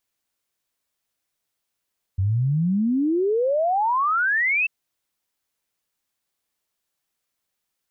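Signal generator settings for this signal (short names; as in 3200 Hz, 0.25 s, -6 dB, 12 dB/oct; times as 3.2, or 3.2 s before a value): log sweep 91 Hz -> 2700 Hz 2.49 s -18 dBFS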